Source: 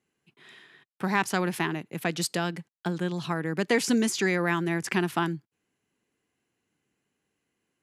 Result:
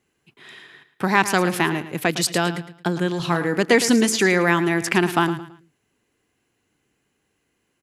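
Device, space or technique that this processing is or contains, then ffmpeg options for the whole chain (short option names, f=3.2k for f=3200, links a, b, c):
low shelf boost with a cut just above: -filter_complex "[0:a]asettb=1/sr,asplit=3[a][b][c];[a]atrim=end=3.164[d];[b]atrim=start=3.16:end=3.59,asetpts=PTS-STARTPTS,afade=t=in:d=0.004:c=qsin,afade=t=out:st=0.426:d=0.004:c=qsin,asplit=2[e][f];[f]adelay=35,volume=-9dB[g];[e][g]amix=inputs=2:normalize=0,atrim=end_sample=18963[h];[c]atrim=start=3.586[i];[d][h]acrossfade=d=0.004:c1=hsin:c2=qsin[j];[j][i]acrossfade=d=0.004:c1=qsin:c2=hsin,lowshelf=f=80:g=7.5,equalizer=f=180:t=o:w=0.79:g=-4,aecho=1:1:110|220|330:0.224|0.0694|0.0215,volume=8dB"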